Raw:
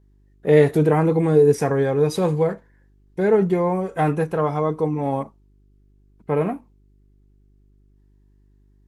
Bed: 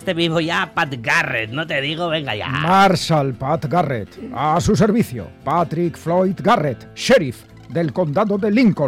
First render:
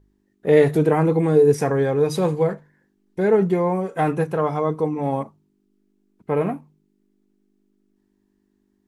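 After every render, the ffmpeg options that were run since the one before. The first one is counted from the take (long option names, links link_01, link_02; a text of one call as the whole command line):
ffmpeg -i in.wav -af "bandreject=frequency=50:width_type=h:width=4,bandreject=frequency=100:width_type=h:width=4,bandreject=frequency=150:width_type=h:width=4" out.wav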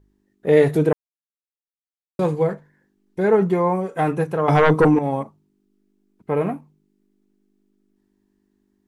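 ffmpeg -i in.wav -filter_complex "[0:a]asettb=1/sr,asplit=3[link_01][link_02][link_03];[link_01]atrim=end=3.244[link_04];[link_02]atrim=start=3.24:end=3.76,asetpts=PTS-STARTPTS,afade=type=in:duration=0.004:curve=qsin,afade=type=out:start_time=0.516:duration=0.004:curve=qsin,equalizer=frequency=1100:width=1.6:gain=5.5[link_05];[link_03]atrim=start=3.756[link_06];[link_04][link_05]acrossfade=duration=0.004:curve1=hsin:curve2=qsin[link_07];[link_07][link_06]acrossfade=duration=0.004:curve1=qsin:curve2=hsin,asettb=1/sr,asplit=3[link_08][link_09][link_10];[link_08]atrim=end=4.484[link_11];[link_09]atrim=start=4.48:end=4.99,asetpts=PTS-STARTPTS,afade=type=in:duration=0.004:curve=qsin,afade=type=out:start_time=0.506:duration=0.004:curve=qsin,aeval=exprs='0.355*sin(PI/2*2.51*val(0)/0.355)':channel_layout=same[link_12];[link_10]atrim=start=4.986[link_13];[link_11][link_12]acrossfade=duration=0.004:curve1=hsin:curve2=qsin[link_14];[link_14][link_13]acrossfade=duration=0.004:curve1=qsin:curve2=hsin,asplit=3[link_15][link_16][link_17];[link_15]atrim=end=0.93,asetpts=PTS-STARTPTS,afade=type=out:start_time=0.926:duration=0.004:curve=hsin[link_18];[link_16]atrim=start=0.93:end=2.19,asetpts=PTS-STARTPTS,volume=0[link_19];[link_17]atrim=start=2.19,asetpts=PTS-STARTPTS,afade=type=in:duration=0.004:curve=hsin[link_20];[link_18][link_19][link_20]concat=n=3:v=0:a=1" out.wav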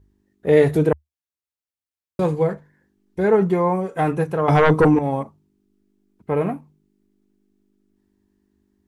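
ffmpeg -i in.wav -af "equalizer=frequency=75:width_type=o:width=0.54:gain=13.5" out.wav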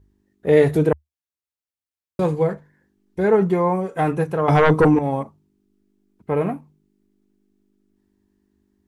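ffmpeg -i in.wav -af anull out.wav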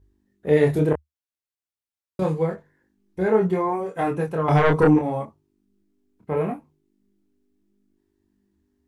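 ffmpeg -i in.wav -af "flanger=delay=22.5:depth=5:speed=0.74" out.wav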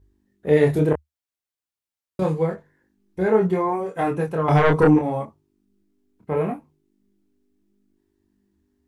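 ffmpeg -i in.wav -af "volume=1dB" out.wav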